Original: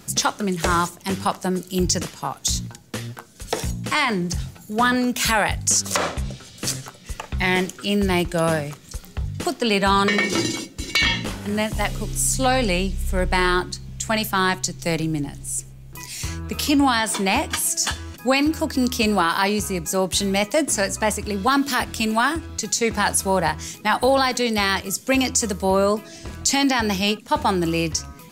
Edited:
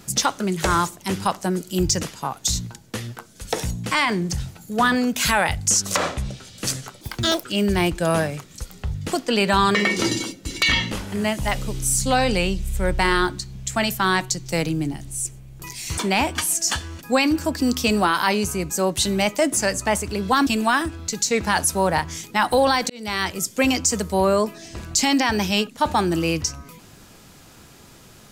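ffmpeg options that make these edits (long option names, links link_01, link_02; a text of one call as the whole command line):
ffmpeg -i in.wav -filter_complex "[0:a]asplit=6[link_01][link_02][link_03][link_04][link_05][link_06];[link_01]atrim=end=7.014[link_07];[link_02]atrim=start=7.01:end=7.77,asetpts=PTS-STARTPTS,asetrate=78498,aresample=44100,atrim=end_sample=18829,asetpts=PTS-STARTPTS[link_08];[link_03]atrim=start=7.766:end=16.312[link_09];[link_04]atrim=start=17.128:end=21.622[link_10];[link_05]atrim=start=21.968:end=24.4,asetpts=PTS-STARTPTS,afade=type=out:start_time=2.428:duration=0.004:curve=hsin[link_11];[link_06]atrim=start=24.4,asetpts=PTS-STARTPTS,afade=type=in:duration=0.43[link_12];[link_07][link_08]acrossfade=duration=0.004:curve1=hsin:curve2=hsin[link_13];[link_13][link_09]acrossfade=duration=0.004:curve1=hsin:curve2=hsin[link_14];[link_14][link_10]acrossfade=duration=0.004:curve1=hsin:curve2=hsin[link_15];[link_11][link_12]concat=n=2:v=0:a=1[link_16];[link_15][link_16]acrossfade=duration=0.004:curve1=hsin:curve2=hsin" out.wav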